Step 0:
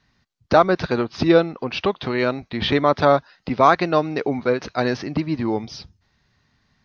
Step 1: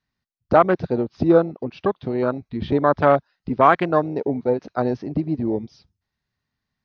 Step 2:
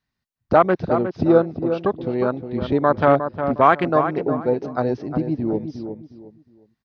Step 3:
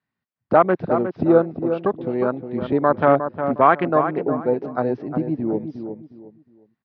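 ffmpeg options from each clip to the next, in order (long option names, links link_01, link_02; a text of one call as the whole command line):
ffmpeg -i in.wav -af "afwtdn=0.0794" out.wav
ffmpeg -i in.wav -filter_complex "[0:a]asplit=2[link_01][link_02];[link_02]adelay=359,lowpass=frequency=1900:poles=1,volume=-8dB,asplit=2[link_03][link_04];[link_04]adelay=359,lowpass=frequency=1900:poles=1,volume=0.28,asplit=2[link_05][link_06];[link_06]adelay=359,lowpass=frequency=1900:poles=1,volume=0.28[link_07];[link_01][link_03][link_05][link_07]amix=inputs=4:normalize=0" out.wav
ffmpeg -i in.wav -af "highpass=130,lowpass=2500" out.wav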